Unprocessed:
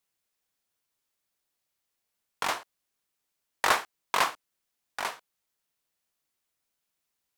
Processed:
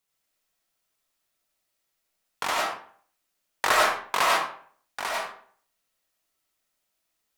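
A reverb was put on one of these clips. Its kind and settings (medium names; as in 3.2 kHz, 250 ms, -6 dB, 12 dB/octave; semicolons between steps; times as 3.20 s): algorithmic reverb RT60 0.53 s, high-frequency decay 0.7×, pre-delay 55 ms, DRR -3.5 dB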